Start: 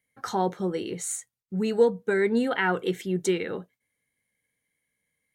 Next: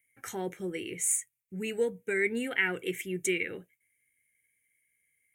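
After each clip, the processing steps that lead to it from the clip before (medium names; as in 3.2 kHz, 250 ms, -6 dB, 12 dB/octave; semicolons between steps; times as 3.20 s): FFT filter 110 Hz 0 dB, 210 Hz -7 dB, 330 Hz -1 dB, 1.1 kHz -14 dB, 2.3 kHz +12 dB, 4.4 kHz -12 dB, 6.4 kHz +4 dB, 10 kHz +11 dB; trim -4 dB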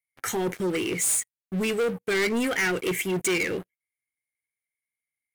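waveshaping leveller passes 5; trim -6 dB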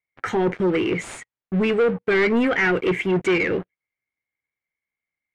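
low-pass 2.3 kHz 12 dB/octave; trim +6.5 dB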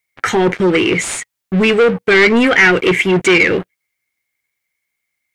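treble shelf 2.5 kHz +11.5 dB; trim +7 dB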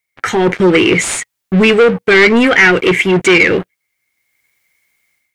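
level rider gain up to 14 dB; trim -1 dB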